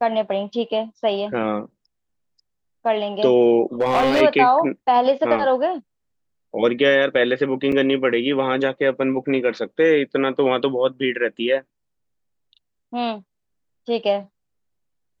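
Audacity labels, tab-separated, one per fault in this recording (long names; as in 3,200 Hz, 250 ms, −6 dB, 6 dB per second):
3.810000	4.220000	clipping −13.5 dBFS
7.720000	7.720000	drop-out 3.4 ms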